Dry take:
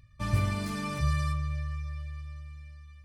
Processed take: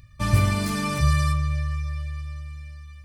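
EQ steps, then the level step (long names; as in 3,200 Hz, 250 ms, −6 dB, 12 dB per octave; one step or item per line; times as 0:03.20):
high-shelf EQ 6,200 Hz +5.5 dB
+7.5 dB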